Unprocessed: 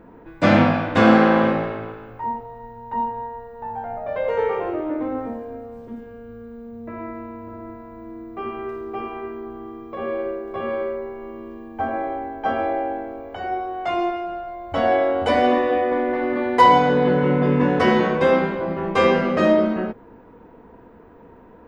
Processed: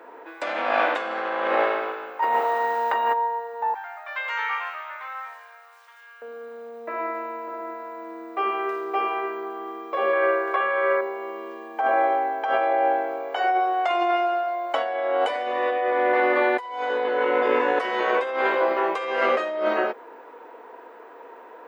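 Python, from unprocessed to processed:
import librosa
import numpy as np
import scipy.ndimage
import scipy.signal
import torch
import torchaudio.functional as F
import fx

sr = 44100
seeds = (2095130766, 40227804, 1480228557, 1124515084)

y = fx.spectral_comp(x, sr, ratio=2.0, at=(2.22, 3.12), fade=0.02)
y = fx.highpass(y, sr, hz=1200.0, slope=24, at=(3.74, 6.22))
y = fx.peak_eq(y, sr, hz=1600.0, db=11.5, octaves=1.4, at=(10.13, 11.01))
y = scipy.signal.sosfilt(scipy.signal.bessel(6, 610.0, 'highpass', norm='mag', fs=sr, output='sos'), y)
y = fx.dynamic_eq(y, sr, hz=5300.0, q=2.0, threshold_db=-50.0, ratio=4.0, max_db=-6)
y = fx.over_compress(y, sr, threshold_db=-28.0, ratio=-1.0)
y = y * 10.0 ** (5.0 / 20.0)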